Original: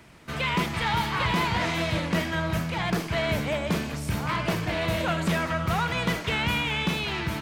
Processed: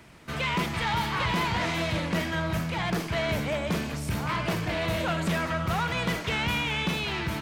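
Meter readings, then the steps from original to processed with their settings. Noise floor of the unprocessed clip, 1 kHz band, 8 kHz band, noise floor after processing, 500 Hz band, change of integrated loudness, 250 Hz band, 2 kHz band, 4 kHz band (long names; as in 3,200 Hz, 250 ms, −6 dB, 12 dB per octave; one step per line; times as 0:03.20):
−35 dBFS, −1.5 dB, −1.0 dB, −35 dBFS, −1.5 dB, −1.5 dB, −1.5 dB, −1.5 dB, −1.5 dB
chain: soft clipping −20 dBFS, distortion −19 dB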